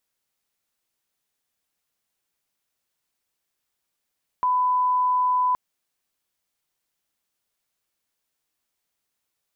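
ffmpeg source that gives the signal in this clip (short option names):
-f lavfi -i "sine=f=1000:d=1.12:r=44100,volume=0.06dB"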